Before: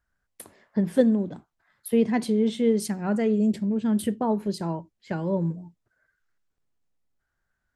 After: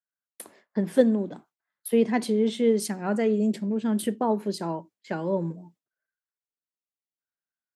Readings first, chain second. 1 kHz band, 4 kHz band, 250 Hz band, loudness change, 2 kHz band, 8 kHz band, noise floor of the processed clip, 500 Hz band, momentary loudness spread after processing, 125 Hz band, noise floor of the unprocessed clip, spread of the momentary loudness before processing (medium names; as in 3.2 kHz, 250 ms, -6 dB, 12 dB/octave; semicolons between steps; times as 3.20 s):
+1.5 dB, +1.5 dB, -2.0 dB, -0.5 dB, +1.5 dB, +1.5 dB, under -85 dBFS, +1.0 dB, 13 LU, -3.5 dB, -79 dBFS, 10 LU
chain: high-pass 230 Hz 12 dB/octave; gate with hold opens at -48 dBFS; trim +1.5 dB